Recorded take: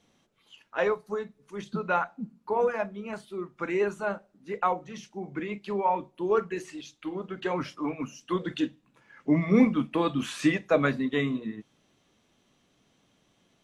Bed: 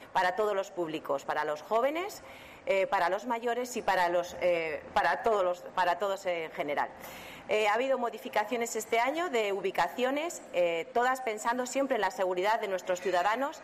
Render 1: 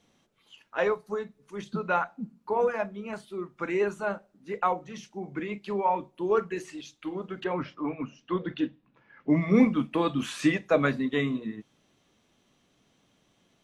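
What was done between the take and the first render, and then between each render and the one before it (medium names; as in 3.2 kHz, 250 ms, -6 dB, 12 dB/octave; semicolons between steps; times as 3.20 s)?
7.44–9.30 s: distance through air 230 m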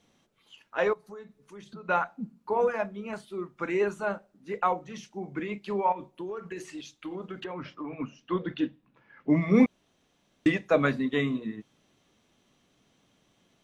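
0.93–1.89 s: compression 2.5:1, threshold -46 dBFS; 5.92–7.93 s: compression 16:1, threshold -32 dBFS; 9.66–10.46 s: room tone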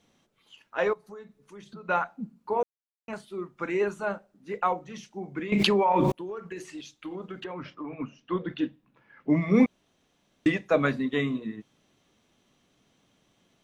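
2.63–3.08 s: mute; 5.52–6.12 s: level flattener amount 100%; 7.70–8.50 s: treble shelf 5.3 kHz -6.5 dB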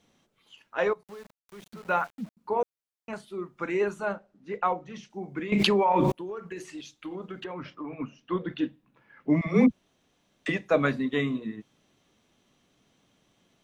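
1.03–2.37 s: small samples zeroed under -47 dBFS; 4.13–5.10 s: distance through air 76 m; 9.41–10.49 s: phase dispersion lows, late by 58 ms, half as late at 330 Hz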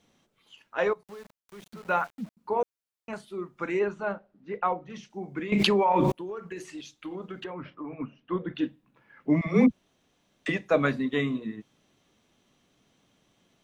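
3.79–4.90 s: distance through air 150 m; 7.50–8.55 s: distance through air 290 m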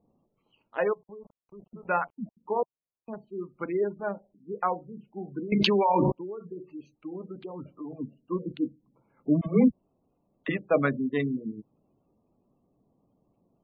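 local Wiener filter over 25 samples; spectral gate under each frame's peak -25 dB strong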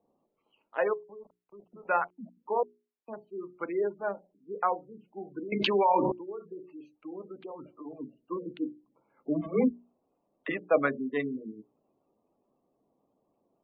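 three-band isolator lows -14 dB, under 270 Hz, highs -12 dB, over 3.3 kHz; hum notches 60/120/180/240/300/360/420 Hz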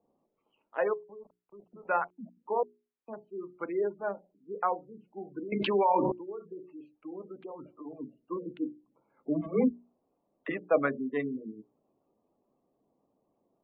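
distance through air 310 m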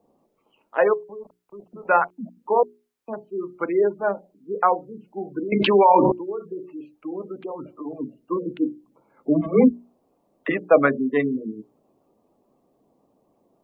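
trim +10.5 dB; peak limiter -3 dBFS, peak gain reduction 1 dB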